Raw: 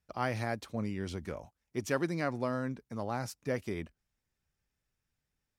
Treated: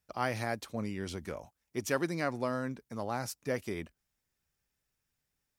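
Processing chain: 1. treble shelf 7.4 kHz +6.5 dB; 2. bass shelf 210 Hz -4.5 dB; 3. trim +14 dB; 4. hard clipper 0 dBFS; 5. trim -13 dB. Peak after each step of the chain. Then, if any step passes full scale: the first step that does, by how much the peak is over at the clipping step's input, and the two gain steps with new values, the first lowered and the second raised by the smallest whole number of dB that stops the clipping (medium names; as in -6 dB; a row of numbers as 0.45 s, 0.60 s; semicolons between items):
-16.5 dBFS, -17.0 dBFS, -3.0 dBFS, -3.0 dBFS, -16.0 dBFS; nothing clips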